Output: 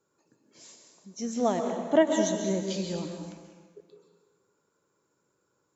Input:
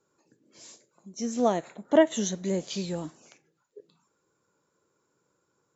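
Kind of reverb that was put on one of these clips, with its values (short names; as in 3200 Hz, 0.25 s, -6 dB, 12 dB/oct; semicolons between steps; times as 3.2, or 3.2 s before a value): plate-style reverb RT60 1.5 s, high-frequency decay 0.75×, pre-delay 0.115 s, DRR 4 dB; gain -2 dB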